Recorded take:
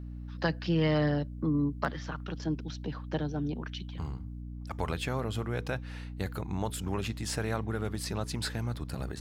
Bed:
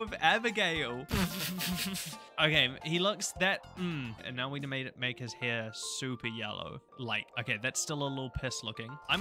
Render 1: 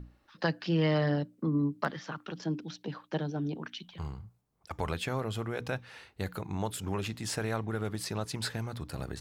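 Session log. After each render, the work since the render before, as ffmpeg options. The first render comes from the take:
-af "bandreject=f=60:t=h:w=6,bandreject=f=120:t=h:w=6,bandreject=f=180:t=h:w=6,bandreject=f=240:t=h:w=6,bandreject=f=300:t=h:w=6"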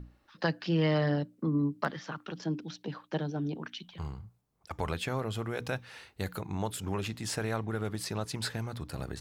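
-filter_complex "[0:a]asettb=1/sr,asplit=3[a][b][c];[a]atrim=end=5.454[d];[b]atrim=start=5.45:end=6.4,asetpts=PTS-STARTPTS,afade=t=in:d=0.004:c=qsin,afade=t=out:st=0.946:d=0.004:c=qsin,highshelf=f=4.3k:g=4.5[e];[c]atrim=start=6.396[f];[d][e]acrossfade=d=0.004:c1=hsin:c2=qsin[g];[g][f]acrossfade=d=0.004:c1=qsin:c2=hsin"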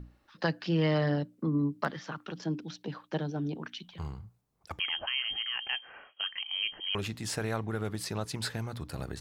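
-filter_complex "[0:a]asettb=1/sr,asplit=3[a][b][c];[a]atrim=end=4.794[d];[b]atrim=start=4.79:end=6.95,asetpts=PTS-STARTPTS,afade=t=in:d=0.004:c=qsin,afade=t=out:st=2.156:d=0.004:c=qsin,lowpass=f=2.8k:t=q:w=0.5098,lowpass=f=2.8k:t=q:w=0.6013,lowpass=f=2.8k:t=q:w=0.9,lowpass=f=2.8k:t=q:w=2.563,afreqshift=-3300[e];[c]atrim=start=6.946[f];[d][e]acrossfade=d=0.004:c1=hsin:c2=qsin[g];[g][f]acrossfade=d=0.004:c1=qsin:c2=hsin"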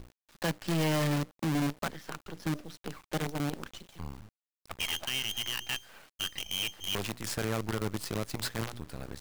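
-af "asoftclip=type=hard:threshold=-28.5dB,acrusher=bits=6:dc=4:mix=0:aa=0.000001"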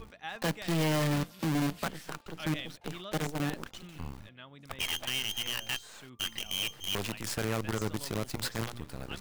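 -filter_complex "[1:a]volume=-14.5dB[a];[0:a][a]amix=inputs=2:normalize=0"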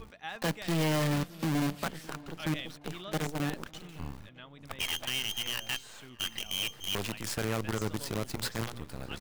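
-filter_complex "[0:a]asplit=2[a][b];[b]adelay=612,lowpass=f=1.7k:p=1,volume=-20dB,asplit=2[c][d];[d]adelay=612,lowpass=f=1.7k:p=1,volume=0.41,asplit=2[e][f];[f]adelay=612,lowpass=f=1.7k:p=1,volume=0.41[g];[a][c][e][g]amix=inputs=4:normalize=0"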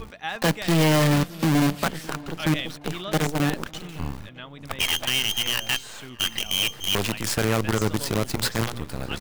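-af "volume=9.5dB"

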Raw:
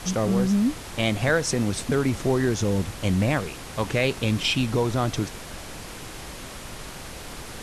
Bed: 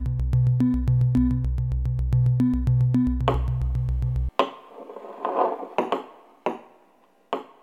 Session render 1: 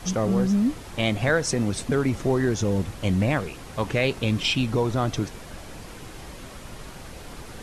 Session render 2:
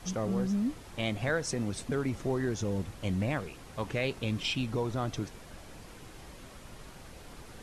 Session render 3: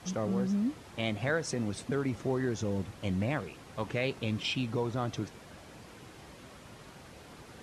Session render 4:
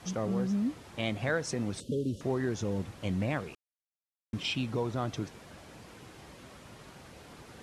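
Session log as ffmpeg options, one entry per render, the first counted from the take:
-af "afftdn=nr=6:nf=-39"
-af "volume=-8.5dB"
-af "highpass=82,highshelf=f=8.2k:g=-7"
-filter_complex "[0:a]asettb=1/sr,asplit=3[a][b][c];[a]atrim=end=1.804[d];[b]atrim=start=1.8:end=2.21,asetpts=PTS-STARTPTS,afade=t=in:d=0.004:c=qsin,afade=t=out:st=0.406:d=0.004:c=qsin,asuperstop=centerf=1300:order=20:qfactor=0.58[e];[c]atrim=start=2.206[f];[d][e]acrossfade=d=0.004:c1=hsin:c2=qsin[g];[g][f]acrossfade=d=0.004:c1=qsin:c2=hsin,asplit=3[h][i][j];[h]atrim=end=3.55,asetpts=PTS-STARTPTS,afade=t=out:st=3.546:d=0.004:c=hsin[k];[i]atrim=start=3.55:end=4.33,asetpts=PTS-STARTPTS,volume=0[l];[j]atrim=start=4.33,asetpts=PTS-STARTPTS,afade=t=in:d=0.004:c=hsin[m];[k][l][m]concat=n=3:v=0:a=1"

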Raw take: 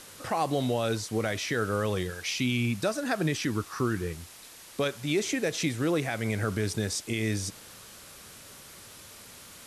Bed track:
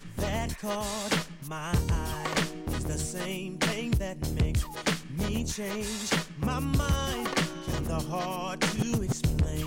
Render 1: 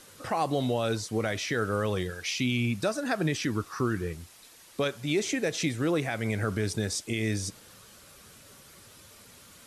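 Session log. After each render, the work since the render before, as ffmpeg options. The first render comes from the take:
-af "afftdn=nr=6:nf=-49"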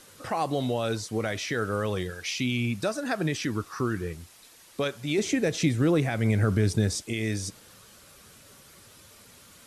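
-filter_complex "[0:a]asettb=1/sr,asplit=3[a][b][c];[a]atrim=end=5.184[d];[b]atrim=start=5.18:end=7.03,asetpts=PTS-STARTPTS,afade=t=in:d=0.004:c=qsin,afade=t=out:st=1.846:d=0.004:c=qsin,lowshelf=f=310:g=9[e];[c]atrim=start=7.026[f];[d][e]acrossfade=d=0.004:c1=hsin:c2=qsin[g];[g][f]acrossfade=d=0.004:c1=qsin:c2=hsin"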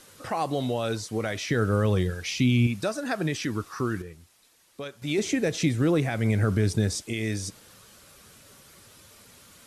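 -filter_complex "[0:a]asettb=1/sr,asplit=3[a][b][c];[a]atrim=end=1.494[d];[b]atrim=start=1.49:end=2.67,asetpts=PTS-STARTPTS,afade=t=in:d=0.004:c=qsin,afade=t=out:st=1.176:d=0.004:c=qsin,lowshelf=f=290:g=10.5[e];[c]atrim=start=2.666[f];[d][e]acrossfade=d=0.004:c1=hsin:c2=qsin[g];[g][f]acrossfade=d=0.004:c1=qsin:c2=hsin,asplit=3[h][i][j];[h]atrim=end=4.022[k];[i]atrim=start=4.018:end=5.022,asetpts=PTS-STARTPTS,volume=-8.5dB[l];[j]atrim=start=5.018[m];[k][l]acrossfade=d=0.004:c1=hsin:c2=hsin[n];[n][m]acrossfade=d=0.004:c1=hsin:c2=hsin"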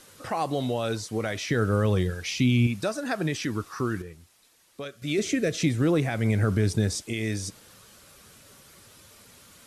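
-filter_complex "[0:a]asettb=1/sr,asplit=3[a][b][c];[a]atrim=end=4.854[d];[b]atrim=start=4.85:end=5.59,asetpts=PTS-STARTPTS,afade=t=in:d=0.004:c=qsin,afade=t=out:st=0.736:d=0.004:c=qsin,asuperstop=centerf=890:order=8:qfactor=2.5[e];[c]atrim=start=5.586[f];[d][e]acrossfade=d=0.004:c1=hsin:c2=qsin[g];[g][f]acrossfade=d=0.004:c1=qsin:c2=hsin"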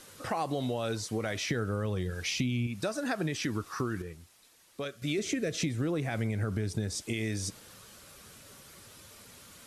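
-af "acompressor=threshold=-28dB:ratio=6"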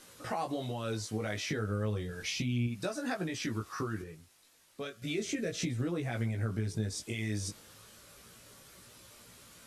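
-af "flanger=delay=16.5:depth=2.7:speed=0.34"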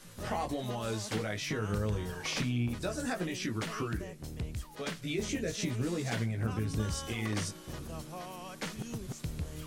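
-filter_complex "[1:a]volume=-11.5dB[a];[0:a][a]amix=inputs=2:normalize=0"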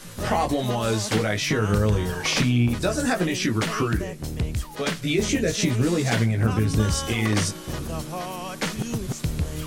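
-af "volume=11.5dB"

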